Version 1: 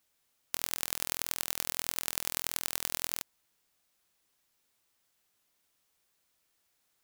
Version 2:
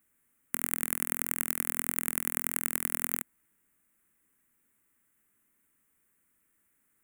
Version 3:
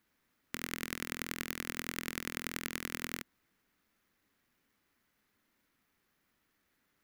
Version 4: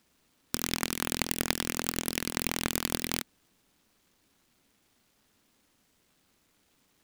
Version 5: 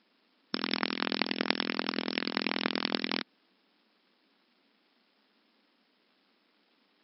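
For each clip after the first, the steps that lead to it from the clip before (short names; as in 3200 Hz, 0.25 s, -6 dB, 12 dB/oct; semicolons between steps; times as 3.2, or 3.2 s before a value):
EQ curve 140 Hz 0 dB, 240 Hz +7 dB, 710 Hz -11 dB, 1300 Hz -2 dB, 2000 Hz 0 dB, 4700 Hz -25 dB, 8400 Hz -1 dB; gain +5 dB
median filter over 5 samples; gain +1 dB
noise-modulated delay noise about 2300 Hz, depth 0.2 ms; gain +8.5 dB
brick-wall FIR band-pass 180–5400 Hz; gain +2 dB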